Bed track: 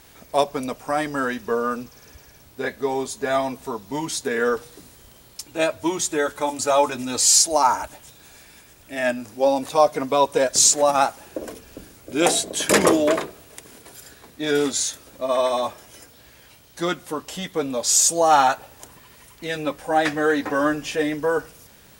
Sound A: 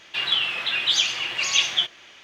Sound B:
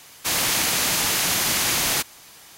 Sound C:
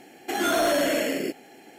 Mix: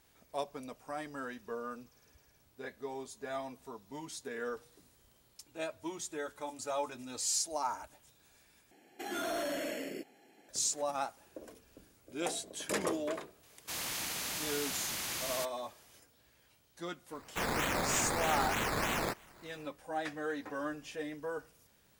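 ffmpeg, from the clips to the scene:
ffmpeg -i bed.wav -i cue0.wav -i cue1.wav -i cue2.wav -filter_complex "[2:a]asplit=2[link_01][link_02];[0:a]volume=-17.5dB[link_03];[link_02]acrusher=samples=12:mix=1:aa=0.000001:lfo=1:lforange=7.2:lforate=3.2[link_04];[link_03]asplit=2[link_05][link_06];[link_05]atrim=end=8.714[link_07];[3:a]atrim=end=1.78,asetpts=PTS-STARTPTS,volume=-13.5dB[link_08];[link_06]atrim=start=10.486[link_09];[link_01]atrim=end=2.57,asetpts=PTS-STARTPTS,volume=-16.5dB,afade=type=in:duration=0.004:curve=hsin,afade=type=out:start_time=2.566:duration=0.004:curve=hsin,adelay=13430[link_10];[link_04]atrim=end=2.57,asetpts=PTS-STARTPTS,volume=-11.5dB,afade=type=in:duration=0.004:curve=hsin,afade=type=out:start_time=2.566:duration=0.004:curve=hsin,adelay=17110[link_11];[link_07][link_08]acrossfade=duration=0.004:curve1=hsin:curve2=hsin[link_12];[link_12][link_09]acrossfade=duration=0.004:curve1=hsin:curve2=hsin[link_13];[link_13][link_10][link_11]amix=inputs=3:normalize=0" out.wav

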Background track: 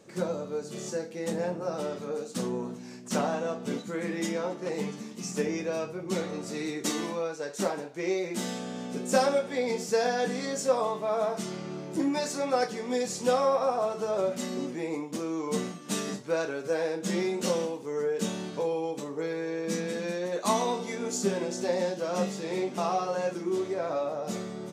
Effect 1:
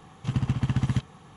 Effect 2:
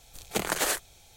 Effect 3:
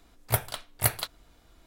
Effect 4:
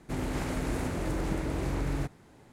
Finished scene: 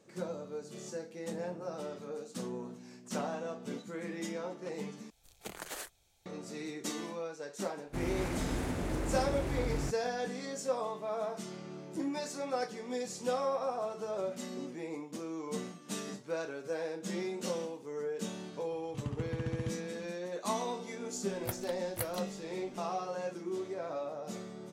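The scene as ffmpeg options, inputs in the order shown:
ffmpeg -i bed.wav -i cue0.wav -i cue1.wav -i cue2.wav -i cue3.wav -filter_complex "[0:a]volume=-8dB[link_01];[4:a]aeval=exprs='0.0668*(abs(mod(val(0)/0.0668+3,4)-2)-1)':channel_layout=same[link_02];[link_01]asplit=2[link_03][link_04];[link_03]atrim=end=5.104[link_05];[2:a]atrim=end=1.16,asetpts=PTS-STARTPTS,volume=-15.5dB[link_06];[link_04]atrim=start=6.256[link_07];[link_02]atrim=end=2.52,asetpts=PTS-STARTPTS,volume=-3.5dB,afade=type=in:duration=0.1,afade=type=out:start_time=2.42:duration=0.1,adelay=7840[link_08];[1:a]atrim=end=1.36,asetpts=PTS-STARTPTS,volume=-12.5dB,afade=type=in:duration=0.004:curve=hsin,afade=type=out:start_time=1.356:duration=0.004:curve=hsin,adelay=18700[link_09];[3:a]atrim=end=1.66,asetpts=PTS-STARTPTS,volume=-13.5dB,afade=type=in:duration=0.004:curve=hsin,afade=type=out:start_time=1.656:duration=0.004:curve=hsin,adelay=21150[link_10];[link_05][link_06]acrossfade=duration=0.004:curve1=hsin:curve2=hsin[link_11];[link_11][link_07]acrossfade=duration=0.004:curve1=hsin:curve2=hsin[link_12];[link_12][link_08][link_09][link_10]amix=inputs=4:normalize=0" out.wav

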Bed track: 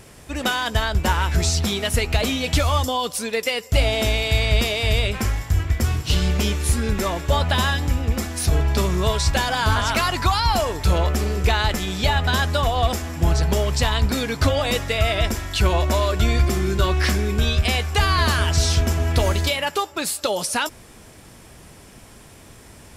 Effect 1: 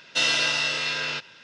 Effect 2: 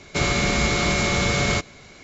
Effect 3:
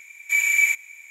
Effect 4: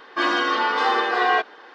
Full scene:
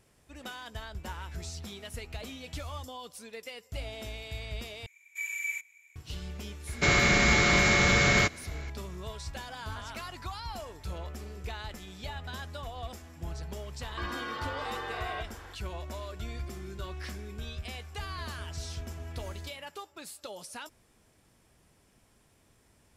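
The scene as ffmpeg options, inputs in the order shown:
ffmpeg -i bed.wav -i cue0.wav -i cue1.wav -i cue2.wav -i cue3.wav -filter_complex "[0:a]volume=-20dB[link_01];[3:a]highpass=frequency=590:width=0.5412,highpass=frequency=590:width=1.3066[link_02];[2:a]equalizer=frequency=1800:width_type=o:width=0.67:gain=7.5[link_03];[4:a]acompressor=threshold=-29dB:ratio=6:attack=3.2:release=140:knee=1:detection=peak[link_04];[link_01]asplit=2[link_05][link_06];[link_05]atrim=end=4.864[link_07];[link_02]atrim=end=1.1,asetpts=PTS-STARTPTS,volume=-15.5dB[link_08];[link_06]atrim=start=5.956[link_09];[link_03]atrim=end=2.03,asetpts=PTS-STARTPTS,volume=-3.5dB,afade=type=in:duration=0.004:curve=hsin,afade=type=out:start_time=2.026:duration=0.004:curve=hsin,adelay=6670[link_10];[link_04]atrim=end=1.74,asetpts=PTS-STARTPTS,volume=-5.5dB,afade=type=in:duration=0.004:curve=hsin,afade=type=out:start_time=1.736:duration=0.004:curve=hsin,adelay=13810[link_11];[link_07][link_08]acrossfade=duration=0.004:curve1=hsin:curve2=hsin[link_12];[link_12][link_09]acrossfade=duration=0.004:curve1=hsin:curve2=hsin[link_13];[link_13][link_10][link_11]amix=inputs=3:normalize=0" out.wav

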